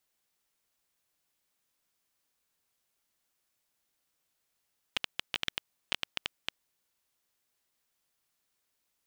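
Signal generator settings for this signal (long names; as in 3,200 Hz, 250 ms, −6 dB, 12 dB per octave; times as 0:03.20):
Geiger counter clicks 10 per second −12 dBFS 1.71 s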